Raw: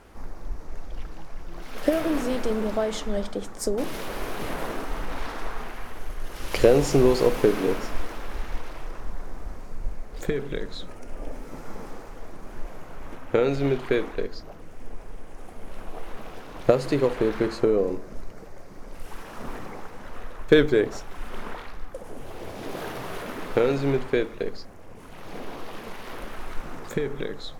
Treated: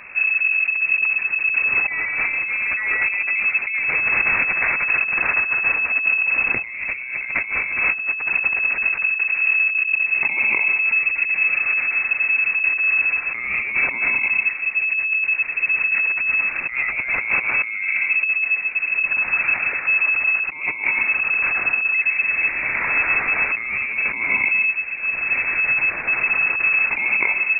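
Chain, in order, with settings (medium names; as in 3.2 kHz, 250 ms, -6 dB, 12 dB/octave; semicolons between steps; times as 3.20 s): on a send at -9 dB: reverberation RT60 0.60 s, pre-delay 95 ms; on the sum: compressor with a negative ratio -29 dBFS, ratio -1; frequency inversion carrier 2.6 kHz; trim +7 dB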